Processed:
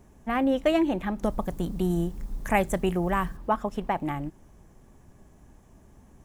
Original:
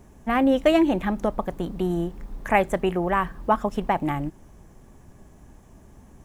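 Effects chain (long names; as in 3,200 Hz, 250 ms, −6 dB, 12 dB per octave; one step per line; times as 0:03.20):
0:01.23–0:03.37: bass and treble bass +7 dB, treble +10 dB
level −4.5 dB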